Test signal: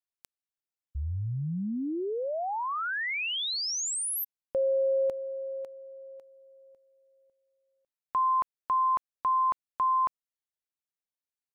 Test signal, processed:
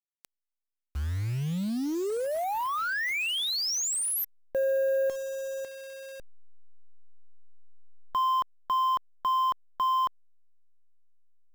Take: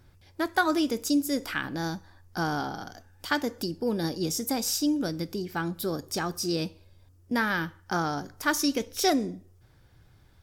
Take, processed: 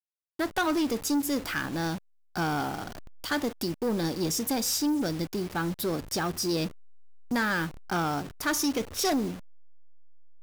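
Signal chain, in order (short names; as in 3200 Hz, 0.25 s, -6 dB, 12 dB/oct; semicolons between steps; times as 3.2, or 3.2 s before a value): level-crossing sampler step -39.5 dBFS; soft clip -25 dBFS; gain +3 dB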